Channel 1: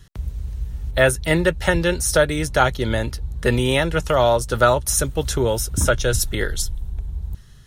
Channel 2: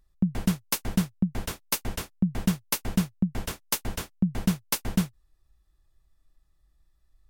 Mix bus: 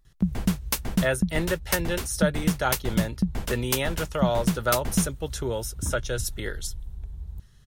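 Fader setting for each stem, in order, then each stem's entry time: −9.0, +0.5 decibels; 0.05, 0.00 seconds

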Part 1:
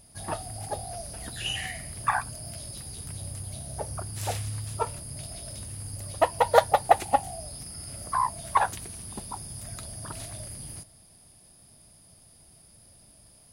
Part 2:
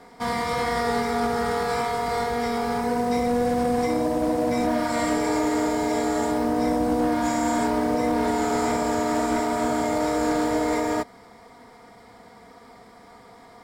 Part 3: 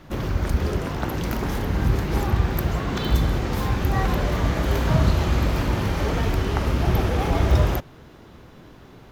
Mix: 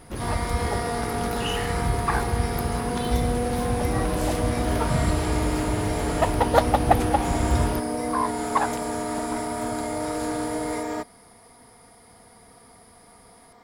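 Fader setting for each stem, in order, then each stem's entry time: −0.5, −5.0, −5.0 decibels; 0.00, 0.00, 0.00 seconds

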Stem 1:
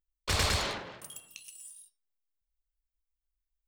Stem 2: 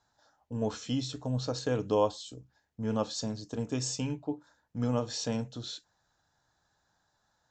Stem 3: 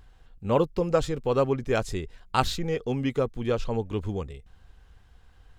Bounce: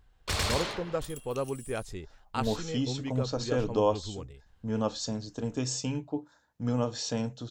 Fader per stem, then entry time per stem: −1.5, +1.0, −9.0 decibels; 0.00, 1.85, 0.00 seconds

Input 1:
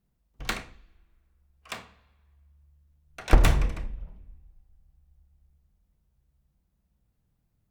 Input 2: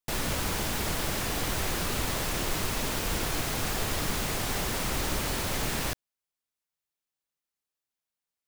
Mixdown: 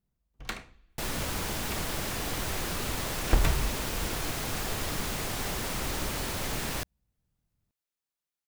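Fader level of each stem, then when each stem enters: −6.0, −2.5 decibels; 0.00, 0.90 seconds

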